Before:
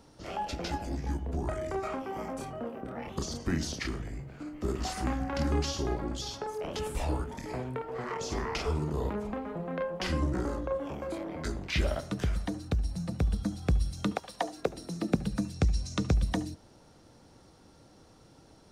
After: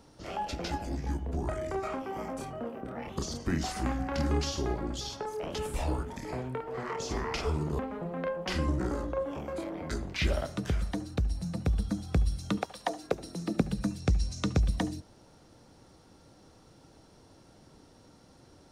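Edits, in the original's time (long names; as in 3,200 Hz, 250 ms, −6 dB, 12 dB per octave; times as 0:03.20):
0:03.63–0:04.84: remove
0:09.00–0:09.33: remove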